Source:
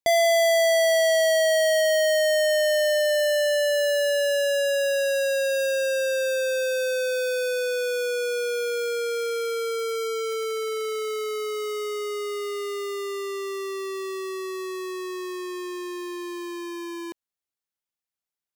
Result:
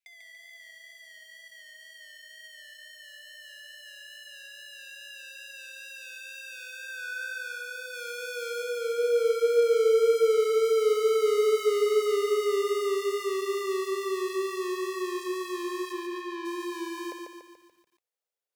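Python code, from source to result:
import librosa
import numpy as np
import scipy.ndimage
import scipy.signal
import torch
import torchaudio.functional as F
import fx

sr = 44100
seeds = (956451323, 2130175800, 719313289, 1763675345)

y = fx.low_shelf(x, sr, hz=470.0, db=-2.5, at=(7.93, 8.63))
y = fx.over_compress(y, sr, threshold_db=-29.0, ratio=-0.5)
y = fx.filter_sweep_highpass(y, sr, from_hz=2200.0, to_hz=490.0, start_s=6.47, end_s=9.11, q=4.0)
y = fx.wow_flutter(y, sr, seeds[0], rate_hz=2.1, depth_cents=49.0)
y = fx.bandpass_edges(y, sr, low_hz=270.0, high_hz=3700.0, at=(15.92, 16.44), fade=0.02)
y = fx.room_flutter(y, sr, wall_m=11.2, rt60_s=0.24)
y = fx.echo_crushed(y, sr, ms=144, feedback_pct=55, bits=10, wet_db=-4)
y = y * librosa.db_to_amplitude(-7.0)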